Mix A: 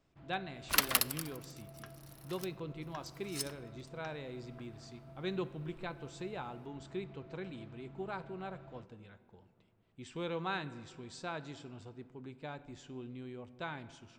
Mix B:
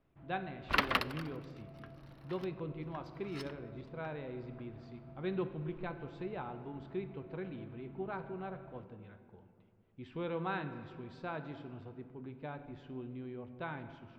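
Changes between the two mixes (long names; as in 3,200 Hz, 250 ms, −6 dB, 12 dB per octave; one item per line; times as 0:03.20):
speech: send +7.0 dB
second sound +6.0 dB
master: add high-frequency loss of the air 370 metres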